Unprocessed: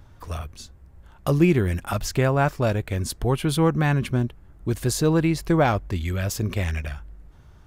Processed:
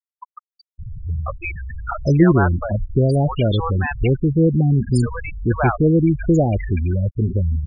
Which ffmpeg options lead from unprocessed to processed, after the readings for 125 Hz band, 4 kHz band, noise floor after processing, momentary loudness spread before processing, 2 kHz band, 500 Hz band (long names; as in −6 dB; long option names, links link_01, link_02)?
+6.0 dB, −3.0 dB, below −85 dBFS, 14 LU, +2.0 dB, +3.5 dB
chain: -filter_complex "[0:a]aeval=exprs='val(0)+0.5*0.0398*sgn(val(0))':channel_layout=same,acrossover=split=670|5900[link_01][link_02][link_03];[link_03]adelay=40[link_04];[link_01]adelay=790[link_05];[link_05][link_02][link_04]amix=inputs=3:normalize=0,afftfilt=real='re*gte(hypot(re,im),0.126)':imag='im*gte(hypot(re,im),0.126)':win_size=1024:overlap=0.75,volume=4.5dB"